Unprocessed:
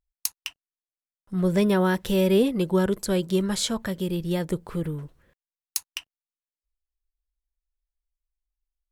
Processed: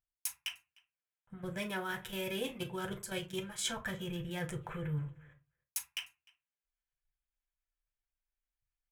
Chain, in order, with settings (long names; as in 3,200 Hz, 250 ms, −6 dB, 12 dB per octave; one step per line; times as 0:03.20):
adaptive Wiener filter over 9 samples
parametric band 4,300 Hz −12.5 dB 0.77 octaves
output level in coarse steps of 11 dB
drawn EQ curve 130 Hz 0 dB, 240 Hz −13 dB, 3,300 Hz +11 dB, 9,900 Hz +7 dB
reversed playback
downward compressor 6 to 1, threshold −39 dBFS, peak gain reduction 16 dB
reversed playback
high-pass filter 94 Hz 6 dB per octave
slap from a distant wall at 52 metres, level −24 dB
convolution reverb RT60 0.25 s, pre-delay 5 ms, DRR 1 dB
level +1 dB